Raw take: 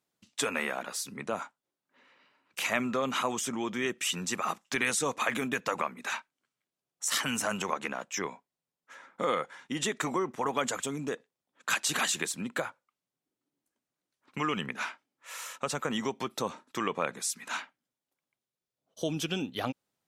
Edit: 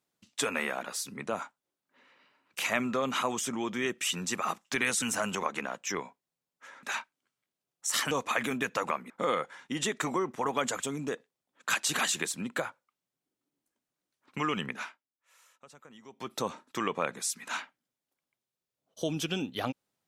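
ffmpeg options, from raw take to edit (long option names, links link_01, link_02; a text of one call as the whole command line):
ffmpeg -i in.wav -filter_complex "[0:a]asplit=7[link_01][link_02][link_03][link_04][link_05][link_06][link_07];[link_01]atrim=end=5.022[link_08];[link_02]atrim=start=7.288:end=9.102[link_09];[link_03]atrim=start=6.008:end=7.292[link_10];[link_04]atrim=start=5.018:end=6.012[link_11];[link_05]atrim=start=9.098:end=15.06,asetpts=PTS-STARTPTS,afade=type=out:start_time=5.652:duration=0.31:curve=qua:silence=0.0841395[link_12];[link_06]atrim=start=15.06:end=16.02,asetpts=PTS-STARTPTS,volume=-21.5dB[link_13];[link_07]atrim=start=16.02,asetpts=PTS-STARTPTS,afade=type=in:duration=0.31:curve=qua:silence=0.0841395[link_14];[link_08][link_09]acrossfade=duration=0.004:curve1=hsin:curve2=hsin[link_15];[link_15][link_10]acrossfade=duration=0.004:curve1=hsin:curve2=hsin[link_16];[link_16][link_11]acrossfade=duration=0.004:curve1=hsin:curve2=hsin[link_17];[link_12][link_13][link_14]concat=n=3:v=0:a=1[link_18];[link_17][link_18]acrossfade=duration=0.004:curve1=hsin:curve2=hsin" out.wav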